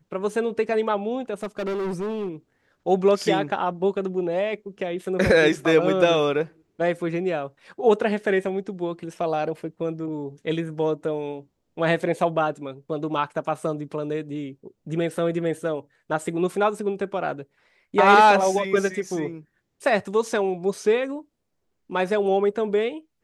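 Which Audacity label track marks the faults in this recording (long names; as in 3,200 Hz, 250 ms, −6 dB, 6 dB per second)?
1.430000	2.290000	clipping −24.5 dBFS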